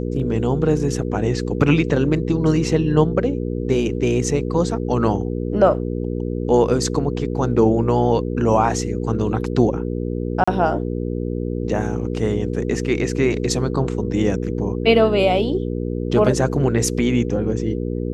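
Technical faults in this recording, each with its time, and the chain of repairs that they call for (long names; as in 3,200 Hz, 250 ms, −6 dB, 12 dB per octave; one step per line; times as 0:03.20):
mains hum 60 Hz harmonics 8 −24 dBFS
0:10.44–0:10.47: drop-out 35 ms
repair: hum removal 60 Hz, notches 8
repair the gap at 0:10.44, 35 ms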